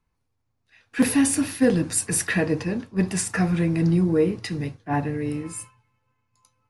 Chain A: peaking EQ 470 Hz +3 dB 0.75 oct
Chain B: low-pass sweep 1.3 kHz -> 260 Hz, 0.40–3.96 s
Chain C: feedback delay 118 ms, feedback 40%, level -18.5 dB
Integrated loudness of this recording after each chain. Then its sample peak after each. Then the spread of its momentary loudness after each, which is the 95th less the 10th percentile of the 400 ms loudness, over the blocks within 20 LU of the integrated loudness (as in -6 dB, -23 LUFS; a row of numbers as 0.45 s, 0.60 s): -22.5 LUFS, -21.5 LUFS, -23.0 LUFS; -7.0 dBFS, -6.0 dBFS, -9.0 dBFS; 11 LU, 11 LU, 10 LU